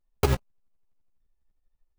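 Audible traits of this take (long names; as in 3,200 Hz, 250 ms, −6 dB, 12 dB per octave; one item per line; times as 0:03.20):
tremolo saw up 12 Hz, depth 75%
aliases and images of a low sample rate 1,800 Hz, jitter 0%
a shimmering, thickened sound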